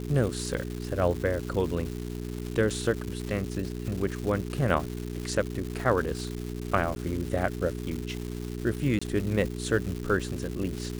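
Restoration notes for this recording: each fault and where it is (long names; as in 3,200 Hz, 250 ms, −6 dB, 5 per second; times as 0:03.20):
surface crackle 400 per second −33 dBFS
mains hum 60 Hz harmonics 7 −35 dBFS
0:06.95–0:06.96: drop-out 10 ms
0:08.99–0:09.02: drop-out 25 ms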